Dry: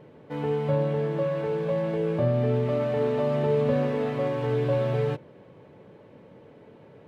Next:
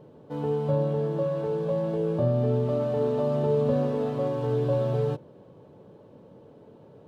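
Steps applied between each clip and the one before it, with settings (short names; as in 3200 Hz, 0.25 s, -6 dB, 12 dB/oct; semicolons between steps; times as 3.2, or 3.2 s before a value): bell 2100 Hz -14 dB 0.84 oct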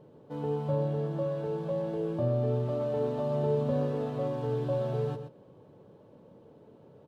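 echo 0.124 s -9.5 dB; gain -4.5 dB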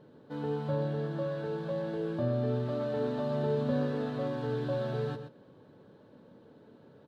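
fifteen-band EQ 250 Hz +6 dB, 1600 Hz +11 dB, 4000 Hz +10 dB; gain -3.5 dB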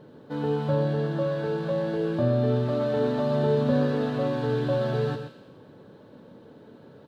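thin delay 84 ms, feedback 59%, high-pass 2200 Hz, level -7.5 dB; gain +7 dB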